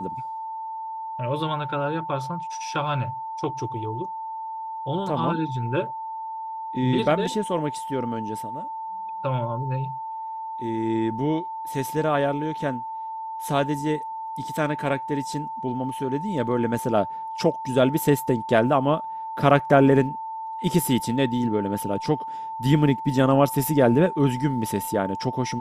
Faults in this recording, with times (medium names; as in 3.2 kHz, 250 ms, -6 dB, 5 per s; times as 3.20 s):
whine 890 Hz -30 dBFS